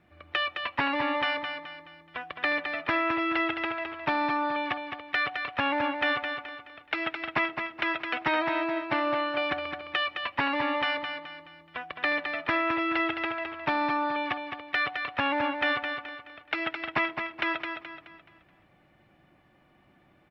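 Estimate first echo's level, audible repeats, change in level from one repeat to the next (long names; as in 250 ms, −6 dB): −6.5 dB, 4, −8.0 dB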